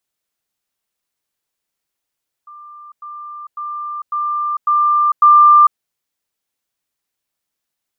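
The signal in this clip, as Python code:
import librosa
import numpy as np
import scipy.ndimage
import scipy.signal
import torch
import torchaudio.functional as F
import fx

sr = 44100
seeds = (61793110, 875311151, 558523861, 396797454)

y = fx.level_ladder(sr, hz=1190.0, from_db=-34.5, step_db=6.0, steps=6, dwell_s=0.45, gap_s=0.1)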